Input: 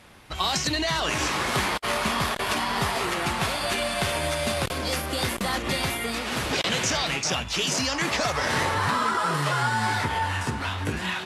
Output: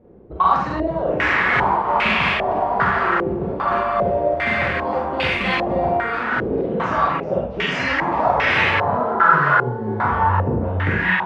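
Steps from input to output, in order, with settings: 10.11–10.91 s: bass shelf 420 Hz +6 dB; Schroeder reverb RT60 0.45 s, combs from 33 ms, DRR -2 dB; step-sequenced low-pass 2.5 Hz 420–2500 Hz

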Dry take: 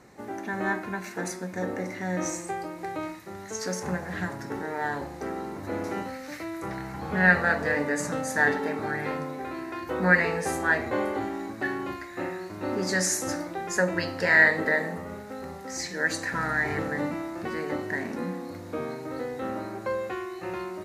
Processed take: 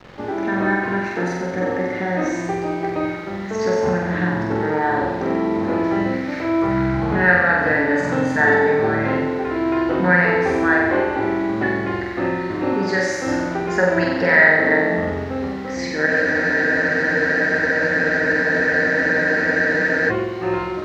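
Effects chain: in parallel at +3 dB: compression, threshold -33 dBFS, peak gain reduction 18 dB; on the sum: bit crusher 7-bit; distance through air 230 m; on a send: flutter echo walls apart 7.8 m, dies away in 1.1 s; on the sum: spectral freeze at 16.09 s, 4.00 s; trim +3 dB

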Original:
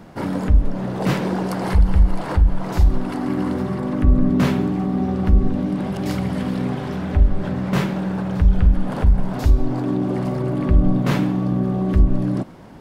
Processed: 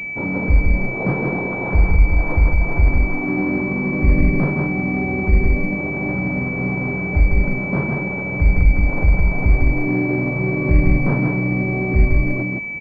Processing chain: delay 162 ms -3.5 dB; class-D stage that switches slowly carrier 2.3 kHz

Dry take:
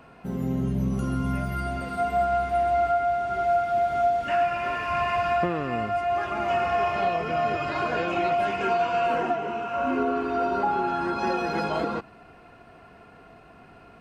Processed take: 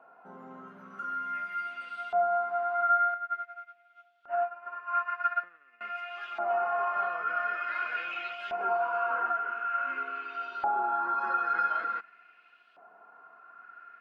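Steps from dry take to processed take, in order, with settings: steep high-pass 160 Hz 48 dB/octave; peaking EQ 1.4 kHz +11.5 dB 0.33 oct; LFO band-pass saw up 0.47 Hz 710–3400 Hz; 3.14–5.81 s: upward expansion 2.5:1, over -37 dBFS; trim -2.5 dB

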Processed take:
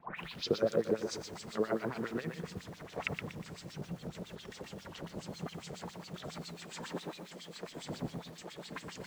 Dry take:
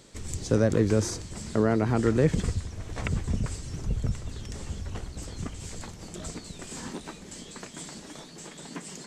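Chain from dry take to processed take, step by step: tape start-up on the opening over 0.58 s; wind noise 150 Hz -34 dBFS; peaking EQ 170 Hz +13 dB 0.47 oct; compression 3:1, threshold -23 dBFS, peak gain reduction 10.5 dB; LFO band-pass sine 7.3 Hz 460–4200 Hz; pre-echo 41 ms -19.5 dB; bit-crushed delay 120 ms, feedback 35%, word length 10-bit, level -6 dB; trim +4 dB

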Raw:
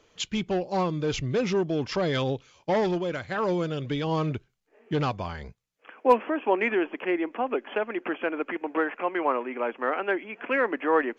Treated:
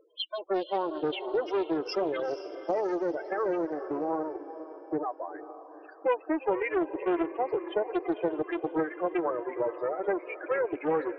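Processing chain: square wave that keeps the level; treble shelf 3.4 kHz +10 dB; upward compressor, threshold -40 dBFS; waveshaping leveller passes 2; compression 10:1, threshold -14 dBFS, peak gain reduction 11.5 dB; elliptic high-pass 320 Hz, stop band 60 dB; loudest bins only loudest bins 8; echo that smears into a reverb 466 ms, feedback 47%, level -12 dB; loudspeaker Doppler distortion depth 0.27 ms; trim -6.5 dB

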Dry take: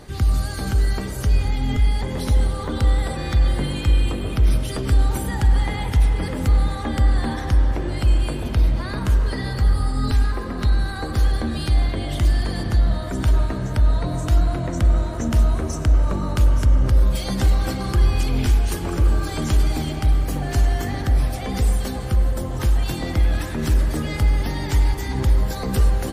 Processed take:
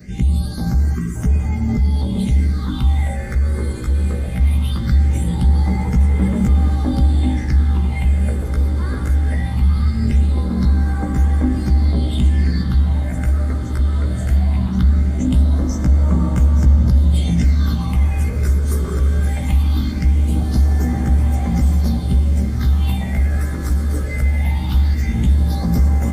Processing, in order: short-time spectra conjugated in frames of 33 ms; time-frequency box 0.95–1.15 s, 410–1000 Hz -25 dB; in parallel at -1 dB: peak limiter -16 dBFS, peak gain reduction 7.5 dB; on the sum: small resonant body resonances 200/2100/3600 Hz, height 12 dB, ringing for 55 ms; phase shifter stages 6, 0.2 Hz, lowest notch 200–4000 Hz; echo that smears into a reverb 1966 ms, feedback 64%, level -9 dB; trim -2.5 dB

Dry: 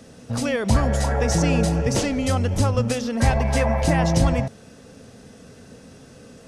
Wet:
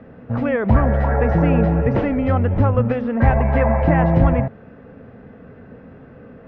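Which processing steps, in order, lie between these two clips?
low-pass 2 kHz 24 dB/octave; trim +4 dB

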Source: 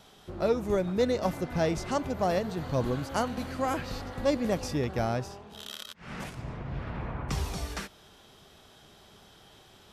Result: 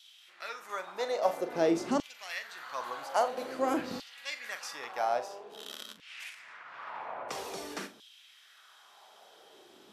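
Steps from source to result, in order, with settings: flutter echo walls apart 7.2 m, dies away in 0.23 s; LFO high-pass saw down 0.5 Hz 220–3300 Hz; trim -3 dB

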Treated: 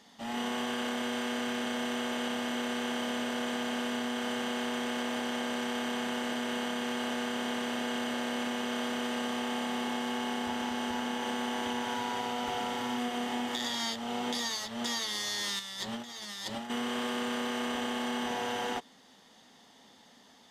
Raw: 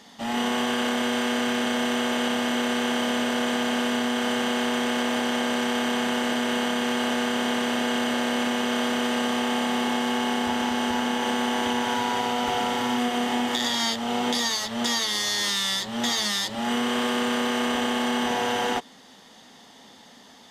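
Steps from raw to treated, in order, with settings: 15.59–16.70 s: compressor with a negative ratio -30 dBFS, ratio -0.5; trim -8.5 dB

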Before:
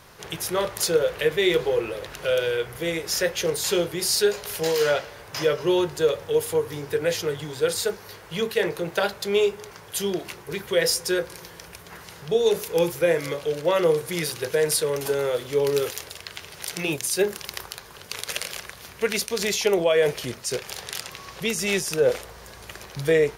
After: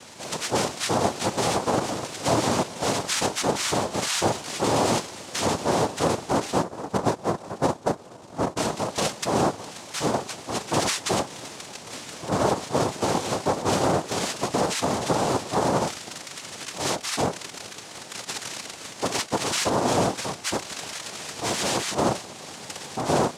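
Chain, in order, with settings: 6.63–8.57 s: Chebyshev band-pass 410–840 Hz, order 4; in parallel at -1 dB: compression, threshold -33 dBFS, peak gain reduction 17 dB; on the sum: peak limiter -14 dBFS, peak gain reduction 8 dB; hard clipper -18.5 dBFS, distortion -17 dB; noise-vocoded speech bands 2

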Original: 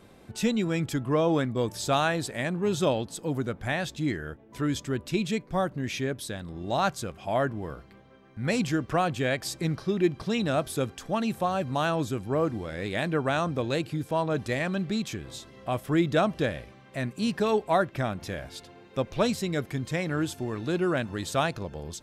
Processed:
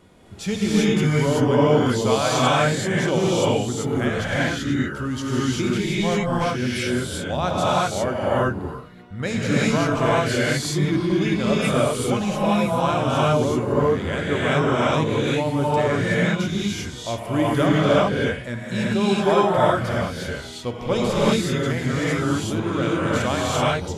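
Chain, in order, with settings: gated-style reverb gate 380 ms rising, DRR -7.5 dB; speed mistake 48 kHz file played as 44.1 kHz

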